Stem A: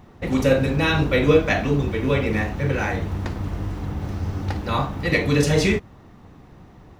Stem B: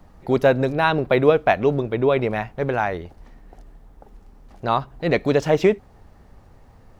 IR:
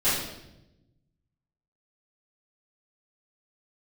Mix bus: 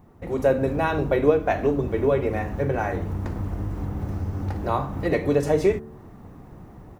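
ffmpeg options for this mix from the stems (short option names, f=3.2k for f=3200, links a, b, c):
-filter_complex "[0:a]bandreject=f=73.88:t=h:w=4,bandreject=f=147.76:t=h:w=4,bandreject=f=221.64:t=h:w=4,bandreject=f=295.52:t=h:w=4,bandreject=f=369.4:t=h:w=4,bandreject=f=443.28:t=h:w=4,bandreject=f=517.16:t=h:w=4,bandreject=f=591.04:t=h:w=4,bandreject=f=664.92:t=h:w=4,bandreject=f=738.8:t=h:w=4,bandreject=f=812.68:t=h:w=4,bandreject=f=886.56:t=h:w=4,bandreject=f=960.44:t=h:w=4,bandreject=f=1.03432k:t=h:w=4,bandreject=f=1.1082k:t=h:w=4,bandreject=f=1.18208k:t=h:w=4,bandreject=f=1.25596k:t=h:w=4,bandreject=f=1.32984k:t=h:w=4,bandreject=f=1.40372k:t=h:w=4,bandreject=f=1.4776k:t=h:w=4,bandreject=f=1.55148k:t=h:w=4,bandreject=f=1.62536k:t=h:w=4,bandreject=f=1.69924k:t=h:w=4,bandreject=f=1.77312k:t=h:w=4,bandreject=f=1.847k:t=h:w=4,acompressor=threshold=-29dB:ratio=2.5,acrusher=bits=11:mix=0:aa=0.000001,volume=-4.5dB[a];[1:a]highpass=f=180:w=0.5412,highpass=f=180:w=1.3066,adelay=2.6,volume=-11.5dB[b];[a][b]amix=inputs=2:normalize=0,equalizer=f=3.7k:t=o:w=2:g=-11,dynaudnorm=f=250:g=3:m=7.5dB"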